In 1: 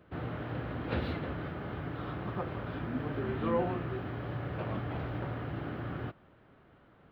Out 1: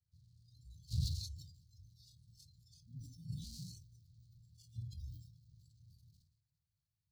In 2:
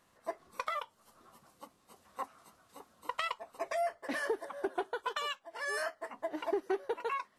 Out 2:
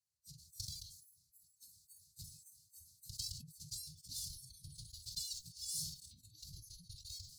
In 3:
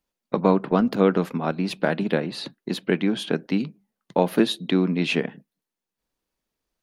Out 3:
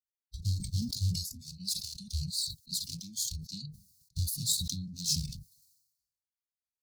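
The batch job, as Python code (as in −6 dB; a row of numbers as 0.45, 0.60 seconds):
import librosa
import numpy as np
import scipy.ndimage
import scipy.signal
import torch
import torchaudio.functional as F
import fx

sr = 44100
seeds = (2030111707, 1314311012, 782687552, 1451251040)

y = fx.lower_of_two(x, sr, delay_ms=3.1)
y = scipy.signal.sosfilt(scipy.signal.cheby1(5, 1.0, [160.0, 4300.0], 'bandstop', fs=sr, output='sos'), y)
y = fx.noise_reduce_blind(y, sr, reduce_db=21)
y = scipy.signal.sosfilt(scipy.signal.butter(2, 91.0, 'highpass', fs=sr, output='sos'), y)
y = fx.sustainer(y, sr, db_per_s=66.0)
y = y * 10.0 ** (6.5 / 20.0)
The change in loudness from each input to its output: −9.0, −8.5, −10.5 LU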